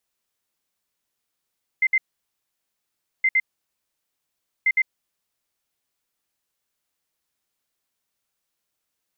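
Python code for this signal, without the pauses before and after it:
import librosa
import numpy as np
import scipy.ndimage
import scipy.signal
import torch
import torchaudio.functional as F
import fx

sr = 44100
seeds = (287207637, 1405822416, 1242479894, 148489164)

y = fx.beep_pattern(sr, wave='sine', hz=2080.0, on_s=0.05, off_s=0.06, beeps=2, pause_s=1.26, groups=3, level_db=-15.0)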